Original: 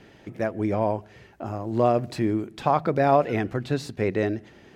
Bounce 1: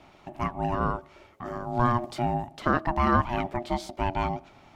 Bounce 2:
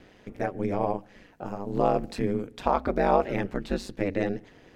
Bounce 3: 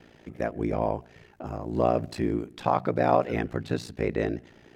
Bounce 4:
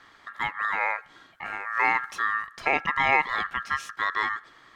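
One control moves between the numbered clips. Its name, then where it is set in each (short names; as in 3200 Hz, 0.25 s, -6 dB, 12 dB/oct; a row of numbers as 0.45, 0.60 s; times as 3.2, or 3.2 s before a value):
ring modulator, frequency: 480, 97, 29, 1500 Hz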